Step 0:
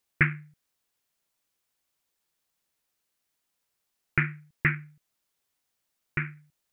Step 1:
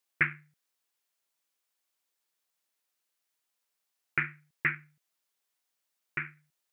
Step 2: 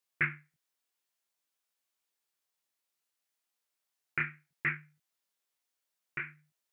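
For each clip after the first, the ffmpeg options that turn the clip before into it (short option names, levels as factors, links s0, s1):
-af "highpass=f=470:p=1,volume=0.75"
-af "flanger=delay=18.5:depth=7.1:speed=0.6"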